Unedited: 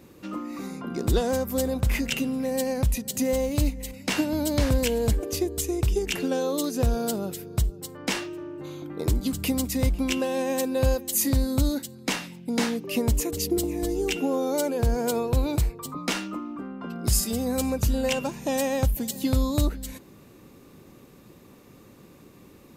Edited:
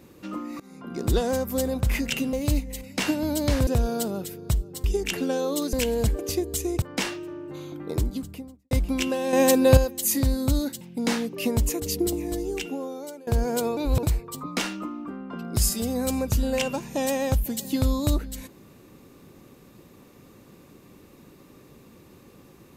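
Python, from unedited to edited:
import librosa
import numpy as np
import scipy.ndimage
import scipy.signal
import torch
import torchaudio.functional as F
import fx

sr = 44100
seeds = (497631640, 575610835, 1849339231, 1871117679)

y = fx.studio_fade_out(x, sr, start_s=8.89, length_s=0.92)
y = fx.edit(y, sr, fx.fade_in_from(start_s=0.6, length_s=0.47, floor_db=-21.5),
    fx.cut(start_s=2.33, length_s=1.1),
    fx.swap(start_s=4.77, length_s=1.09, other_s=6.75, other_length_s=1.17),
    fx.clip_gain(start_s=10.43, length_s=0.44, db=8.0),
    fx.cut(start_s=11.91, length_s=0.41),
    fx.fade_out_to(start_s=13.62, length_s=1.16, floor_db=-21.0),
    fx.reverse_span(start_s=15.28, length_s=0.26), tone=tone)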